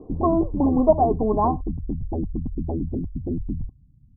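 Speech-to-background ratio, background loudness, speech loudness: 8.0 dB, -29.5 LUFS, -21.5 LUFS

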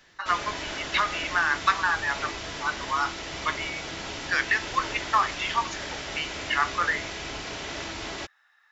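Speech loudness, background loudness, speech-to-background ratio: -27.5 LUFS, -34.0 LUFS, 6.5 dB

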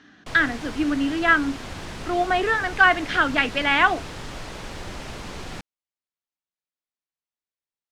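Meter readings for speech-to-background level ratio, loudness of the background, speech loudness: 15.0 dB, -36.0 LUFS, -21.0 LUFS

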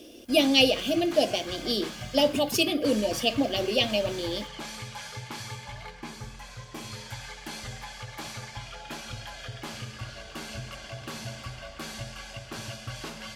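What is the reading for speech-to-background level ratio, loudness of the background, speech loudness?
14.0 dB, -39.0 LUFS, -25.0 LUFS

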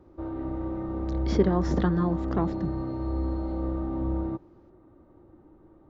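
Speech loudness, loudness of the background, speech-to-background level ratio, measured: -28.0 LUFS, -31.5 LUFS, 3.5 dB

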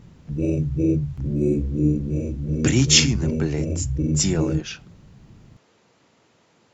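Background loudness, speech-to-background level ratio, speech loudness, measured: -24.5 LUFS, 3.0 dB, -21.5 LUFS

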